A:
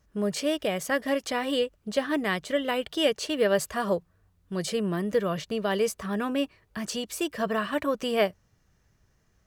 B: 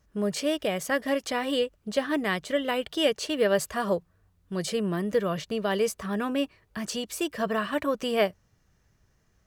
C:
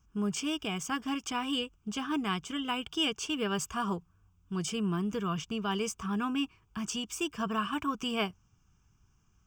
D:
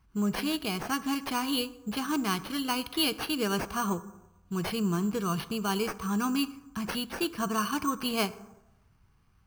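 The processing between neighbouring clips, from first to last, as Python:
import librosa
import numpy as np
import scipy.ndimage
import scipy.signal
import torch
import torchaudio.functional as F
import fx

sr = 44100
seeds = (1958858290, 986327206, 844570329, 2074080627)

y1 = x
y2 = fx.fixed_phaser(y1, sr, hz=2800.0, stages=8)
y3 = fx.rev_plate(y2, sr, seeds[0], rt60_s=1.0, hf_ratio=0.45, predelay_ms=0, drr_db=13.5)
y3 = np.repeat(y3[::6], 6)[:len(y3)]
y3 = y3 * librosa.db_to_amplitude(2.5)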